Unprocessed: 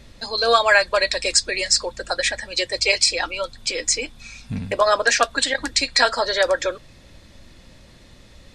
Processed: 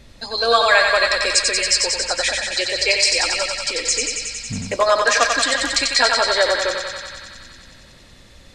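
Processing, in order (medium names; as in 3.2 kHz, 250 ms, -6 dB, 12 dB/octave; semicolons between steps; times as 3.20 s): thinning echo 92 ms, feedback 80%, high-pass 470 Hz, level -4 dB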